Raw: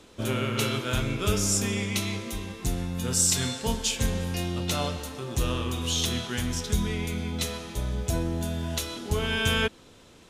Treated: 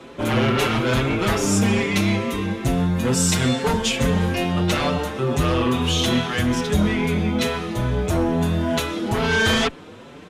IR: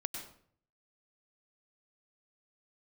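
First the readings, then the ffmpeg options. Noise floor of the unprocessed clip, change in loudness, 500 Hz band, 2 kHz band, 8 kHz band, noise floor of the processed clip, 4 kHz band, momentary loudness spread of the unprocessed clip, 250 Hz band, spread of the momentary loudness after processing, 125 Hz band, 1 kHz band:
-53 dBFS, +7.0 dB, +9.5 dB, +8.5 dB, 0.0 dB, -41 dBFS, +5.0 dB, 8 LU, +10.5 dB, 5 LU, +7.0 dB, +10.5 dB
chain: -filter_complex "[0:a]acrossover=split=100|2800[a][b][c];[b]aeval=exprs='0.168*sin(PI/2*3.16*val(0)/0.168)':c=same[d];[a][d][c]amix=inputs=3:normalize=0,asplit=2[e][f];[f]adelay=5.7,afreqshift=2.3[g];[e][g]amix=inputs=2:normalize=1,volume=2.5dB"

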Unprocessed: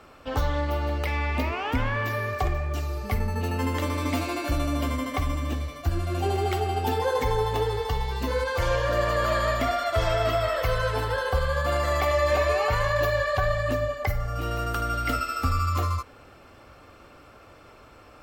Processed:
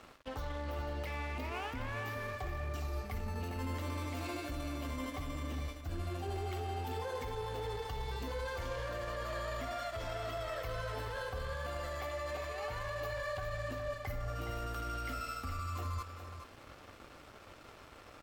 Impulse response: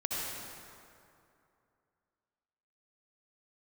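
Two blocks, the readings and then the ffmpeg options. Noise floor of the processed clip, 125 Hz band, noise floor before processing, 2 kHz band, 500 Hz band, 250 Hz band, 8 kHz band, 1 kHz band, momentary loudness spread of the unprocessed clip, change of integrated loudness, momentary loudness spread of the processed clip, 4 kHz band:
-55 dBFS, -13.0 dB, -51 dBFS, -13.0 dB, -14.5 dB, -12.5 dB, -11.5 dB, -13.5 dB, 5 LU, -13.5 dB, 8 LU, -12.5 dB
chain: -af "areverse,acompressor=threshold=-34dB:ratio=8,areverse,alimiter=level_in=8dB:limit=-24dB:level=0:latency=1:release=11,volume=-8dB,aeval=exprs='sgn(val(0))*max(abs(val(0))-0.00237,0)':c=same,aecho=1:1:415:0.335,volume=1.5dB"

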